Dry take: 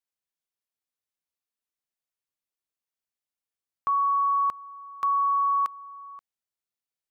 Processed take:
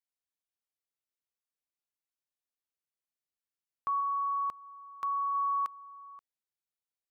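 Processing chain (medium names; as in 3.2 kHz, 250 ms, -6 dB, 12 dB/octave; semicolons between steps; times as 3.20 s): 4.00–5.35 s: dynamic bell 1.5 kHz, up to -3 dB, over -36 dBFS, Q 1.6; trim -6.5 dB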